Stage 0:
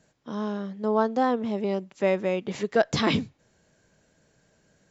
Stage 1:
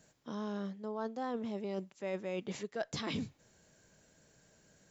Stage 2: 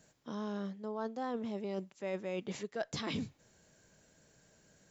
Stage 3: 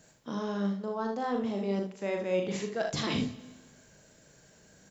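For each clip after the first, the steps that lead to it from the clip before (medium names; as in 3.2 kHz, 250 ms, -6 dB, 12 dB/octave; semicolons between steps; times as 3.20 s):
treble shelf 6.7 kHz +10.5 dB; reverse; compression 6:1, threshold -33 dBFS, peak gain reduction 16 dB; reverse; trim -2.5 dB
no audible change
on a send: early reflections 40 ms -6 dB, 60 ms -9.5 dB, 76 ms -8.5 dB; on the sum: plate-style reverb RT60 1.5 s, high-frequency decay 0.95×, DRR 14.5 dB; trim +5 dB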